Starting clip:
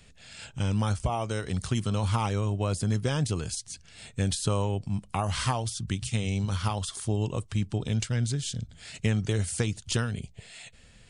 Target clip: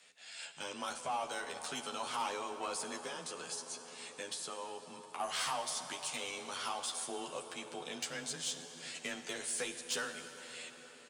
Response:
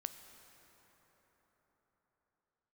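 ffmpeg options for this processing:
-filter_complex "[0:a]highpass=590,asettb=1/sr,asplit=3[s0][s1][s2];[s0]atrim=end=3.054[s3];[s1]atrim=start=3.05:end=5.2,asetpts=PTS-STARTPTS,afade=t=in:d=0.004:c=qsin,afade=t=out:st=2.146:d=0.004:c=qsin,acompressor=threshold=0.0141:ratio=6[s4];[s2]atrim=start=5.196[s5];[s3][s4]acrossfade=d=0.004:c1=hsin:c2=qsin[s6];[s6][s5]acrossfade=d=0.004:c1=qsin:c2=hsin,asoftclip=type=tanh:threshold=0.0447,afreqshift=20,asplit=2[s7][s8];[s8]adelay=12,volume=0.75[s9];[s7][s9]amix=inputs=2:normalize=0[s10];[1:a]atrim=start_sample=2205,asetrate=31752,aresample=44100[s11];[s10][s11]afir=irnorm=-1:irlink=0,volume=0.75"

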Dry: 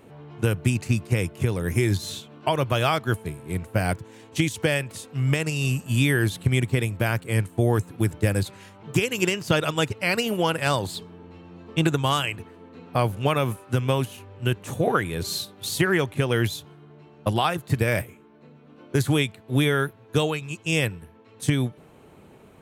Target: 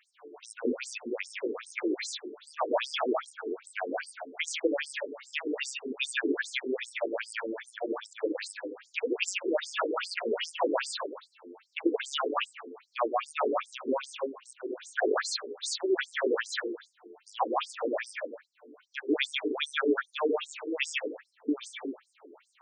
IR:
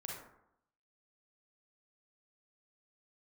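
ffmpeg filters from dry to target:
-filter_complex "[0:a]bandreject=f=79.7:t=h:w=4,bandreject=f=159.4:t=h:w=4,bandreject=f=239.1:t=h:w=4,bandreject=f=318.8:t=h:w=4,bandreject=f=398.5:t=h:w=4,bandreject=f=478.2:t=h:w=4,bandreject=f=557.9:t=h:w=4,bandreject=f=637.6:t=h:w=4,asplit=2[s0][s1];[1:a]atrim=start_sample=2205,adelay=141[s2];[s1][s2]afir=irnorm=-1:irlink=0,volume=1.12[s3];[s0][s3]amix=inputs=2:normalize=0,afftfilt=real='re*between(b*sr/1024,320*pow(6900/320,0.5+0.5*sin(2*PI*2.5*pts/sr))/1.41,320*pow(6900/320,0.5+0.5*sin(2*PI*2.5*pts/sr))*1.41)':imag='im*between(b*sr/1024,320*pow(6900/320,0.5+0.5*sin(2*PI*2.5*pts/sr))/1.41,320*pow(6900/320,0.5+0.5*sin(2*PI*2.5*pts/sr))*1.41)':win_size=1024:overlap=0.75"

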